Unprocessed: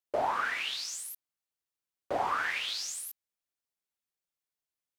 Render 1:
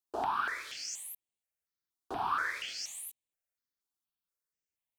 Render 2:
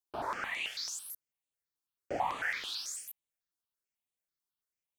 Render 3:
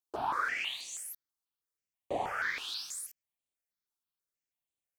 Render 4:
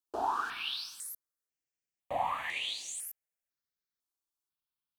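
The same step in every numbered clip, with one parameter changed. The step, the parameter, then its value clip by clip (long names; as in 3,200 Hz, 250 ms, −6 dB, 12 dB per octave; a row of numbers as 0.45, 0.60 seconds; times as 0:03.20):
step-sequenced phaser, speed: 4.2, 9.1, 6.2, 2 Hertz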